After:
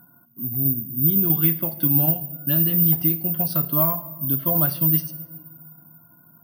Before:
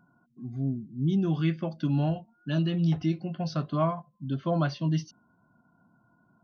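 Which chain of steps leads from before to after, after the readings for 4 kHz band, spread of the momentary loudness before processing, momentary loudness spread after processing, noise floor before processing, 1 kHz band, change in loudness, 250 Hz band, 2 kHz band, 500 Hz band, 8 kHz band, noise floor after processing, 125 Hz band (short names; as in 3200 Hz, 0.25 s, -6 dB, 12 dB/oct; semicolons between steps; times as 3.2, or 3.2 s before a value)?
+2.0 dB, 9 LU, 9 LU, -68 dBFS, +1.5 dB, +10.5 dB, +2.5 dB, +1.5 dB, +1.0 dB, n/a, -54 dBFS, +2.5 dB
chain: de-hum 216.7 Hz, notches 38; in parallel at +2.5 dB: compressor, threshold -35 dBFS, peak gain reduction 13.5 dB; on the sum: tremolo saw down 7.7 Hz, depth 30%; shoebox room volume 2800 m³, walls mixed, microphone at 0.37 m; careless resampling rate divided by 3×, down filtered, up zero stuff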